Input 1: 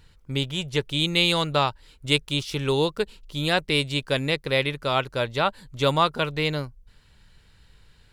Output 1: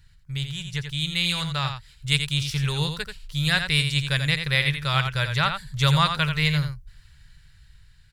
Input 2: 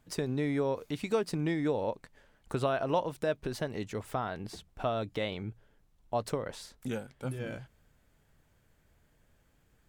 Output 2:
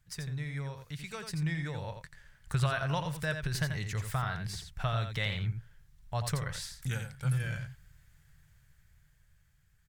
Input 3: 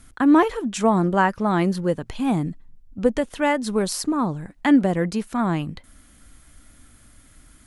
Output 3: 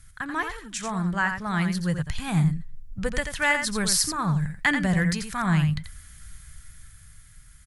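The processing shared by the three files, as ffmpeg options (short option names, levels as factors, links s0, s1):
-filter_complex "[0:a]firequalizer=gain_entry='entry(150,0);entry(240,-22);entry(1700,-1);entry(2700,-6);entry(4800,-2)':delay=0.05:min_phase=1,asplit=2[s0][s1];[s1]aecho=0:1:86:0.422[s2];[s0][s2]amix=inputs=2:normalize=0,dynaudnorm=f=530:g=7:m=2.66"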